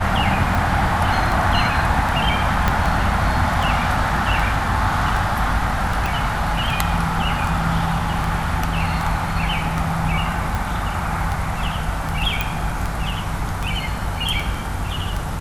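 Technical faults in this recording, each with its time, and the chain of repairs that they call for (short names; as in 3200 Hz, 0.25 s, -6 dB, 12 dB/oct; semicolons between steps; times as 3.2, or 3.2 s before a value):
tick 78 rpm
2.68 pop -4 dBFS
6.06 pop
12.41 pop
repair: de-click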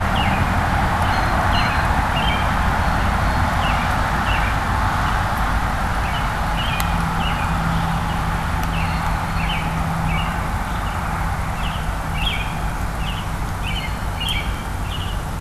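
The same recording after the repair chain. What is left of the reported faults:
2.68 pop
6.06 pop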